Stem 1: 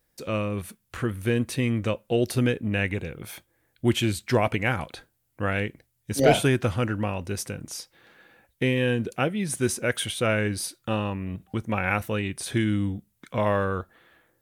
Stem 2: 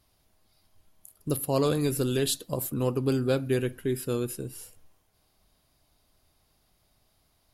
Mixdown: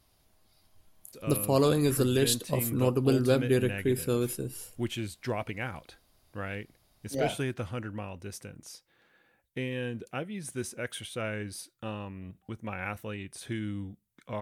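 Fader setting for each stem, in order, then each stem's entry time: -10.5, +1.0 dB; 0.95, 0.00 s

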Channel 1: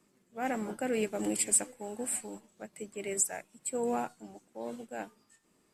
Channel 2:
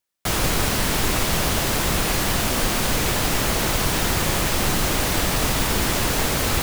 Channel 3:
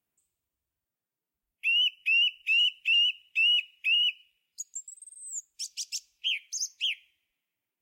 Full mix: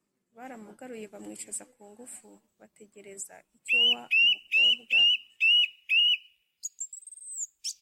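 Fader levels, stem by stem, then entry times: -10.5 dB, off, +2.0 dB; 0.00 s, off, 2.05 s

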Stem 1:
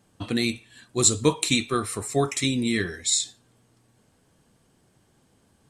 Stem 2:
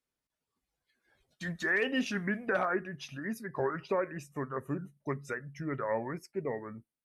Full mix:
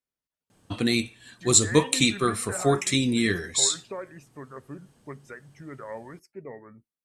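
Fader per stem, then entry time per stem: +1.0, -5.5 dB; 0.50, 0.00 s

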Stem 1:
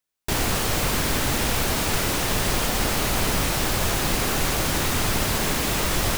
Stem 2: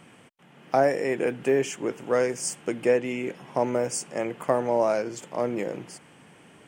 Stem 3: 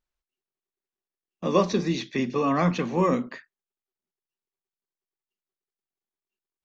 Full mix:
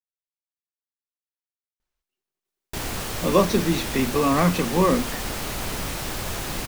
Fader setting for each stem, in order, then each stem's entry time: -6.5 dB, off, +3.0 dB; 2.45 s, off, 1.80 s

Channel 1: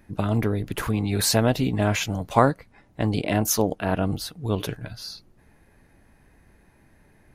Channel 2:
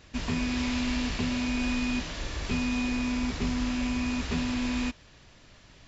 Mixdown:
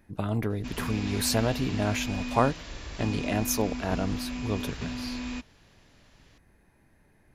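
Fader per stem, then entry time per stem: -5.5, -5.5 dB; 0.00, 0.50 s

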